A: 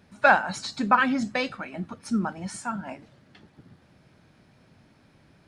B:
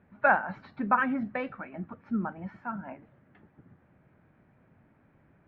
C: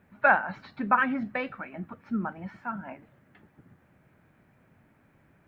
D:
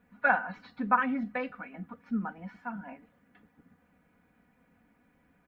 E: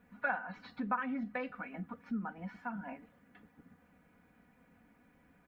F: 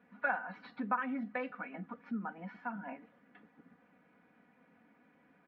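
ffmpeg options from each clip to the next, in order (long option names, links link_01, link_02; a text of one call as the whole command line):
ffmpeg -i in.wav -af "lowpass=frequency=2100:width=0.5412,lowpass=frequency=2100:width=1.3066,volume=-4.5dB" out.wav
ffmpeg -i in.wav -af "highshelf=frequency=2800:gain=12" out.wav
ffmpeg -i in.wav -af "aecho=1:1:4.1:0.82,volume=-6dB" out.wav
ffmpeg -i in.wav -af "acompressor=threshold=-40dB:ratio=2,volume=1dB" out.wav
ffmpeg -i in.wav -af "highpass=200,lowpass=3500,volume=1dB" out.wav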